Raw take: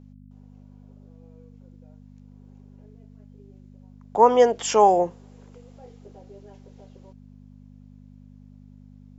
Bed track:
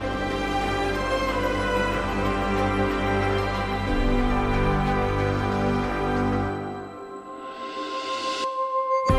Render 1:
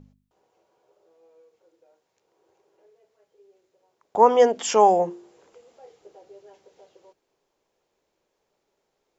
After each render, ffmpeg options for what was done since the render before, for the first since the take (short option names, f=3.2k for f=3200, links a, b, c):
-af "bandreject=f=50:t=h:w=4,bandreject=f=100:t=h:w=4,bandreject=f=150:t=h:w=4,bandreject=f=200:t=h:w=4,bandreject=f=250:t=h:w=4,bandreject=f=300:t=h:w=4,bandreject=f=350:t=h:w=4"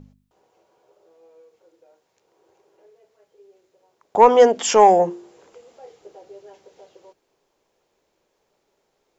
-af "acontrast=28"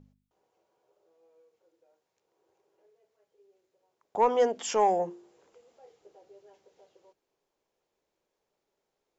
-af "volume=-12dB"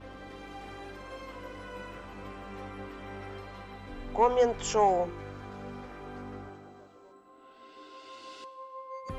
-filter_complex "[1:a]volume=-19dB[a];[0:a][a]amix=inputs=2:normalize=0"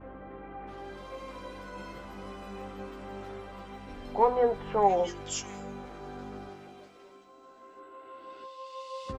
-filter_complex "[0:a]asplit=2[a][b];[b]adelay=15,volume=-7dB[c];[a][c]amix=inputs=2:normalize=0,acrossover=split=2100[d][e];[e]adelay=670[f];[d][f]amix=inputs=2:normalize=0"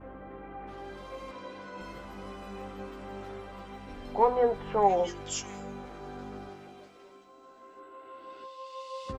-filter_complex "[0:a]asettb=1/sr,asplit=3[a][b][c];[a]atrim=end=1.314[d];[b]atrim=start=1.31:end=1.81,asetpts=PTS-STARTPTS,afade=t=in:d=0.004:c=qsin,afade=t=out:st=0.496:d=0.004:c=qsin,highpass=130,lowpass=6.5k[e];[c]atrim=start=1.806[f];[d][e]acrossfade=d=0.004:c1=hsin:c2=qsin[g];[g][f]acrossfade=d=0.004:c1=qsin:c2=hsin"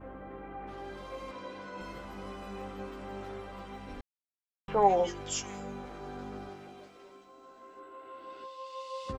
-filter_complex "[0:a]asplit=3[a][b][c];[a]atrim=end=4.01,asetpts=PTS-STARTPTS,afade=t=out:st=4.006:d=0.004:c=hsin[d];[b]atrim=start=4.01:end=4.68,asetpts=PTS-STARTPTS,volume=0[e];[c]atrim=start=4.68,asetpts=PTS-STARTPTS,afade=t=in:d=0.004:c=hsin[f];[d][e][f]concat=n=3:v=0:a=1"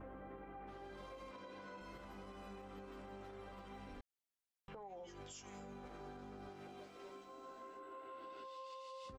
-af "acompressor=threshold=-41dB:ratio=6,alimiter=level_in=20dB:limit=-24dB:level=0:latency=1:release=228,volume=-20dB"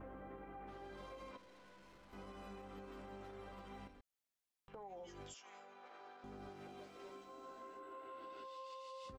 -filter_complex "[0:a]asettb=1/sr,asplit=3[a][b][c];[a]atrim=end=1.374[d];[b]atrim=start=1.37:end=2.13,asetpts=PTS-STARTPTS,afade=t=in:d=0.004:c=qsin,afade=t=out:st=0.756:d=0.004:c=qsin,aeval=exprs='(tanh(1120*val(0)+0.55)-tanh(0.55))/1120':c=same[e];[c]atrim=start=2.126[f];[d][e]acrossfade=d=0.004:c1=hsin:c2=qsin[g];[g][f]acrossfade=d=0.004:c1=qsin:c2=hsin,asettb=1/sr,asplit=3[h][i][j];[h]atrim=end=3.874[k];[i]atrim=start=3.87:end=4.74,asetpts=PTS-STARTPTS,afade=t=in:d=0.004:c=qsin,afade=t=out:st=0.866:d=0.004:c=qsin,acompressor=threshold=-58dB:ratio=6:attack=3.2:release=140:knee=1:detection=peak[l];[j]atrim=start=4.736[m];[k][l]acrossfade=d=0.004:c1=hsin:c2=qsin[n];[n][m]acrossfade=d=0.004:c1=qsin:c2=hsin,asettb=1/sr,asplit=3[o][p][q];[o]atrim=end=5.344[r];[p]atrim=start=5.34:end=6.24,asetpts=PTS-STARTPTS,afade=t=in:d=0.004:c=qsin,afade=t=out:st=0.896:d=0.004:c=qsin,highpass=660,lowpass=4.6k[s];[q]atrim=start=6.236[t];[r][s]acrossfade=d=0.004:c1=hsin:c2=qsin[u];[u][t]acrossfade=d=0.004:c1=qsin:c2=hsin"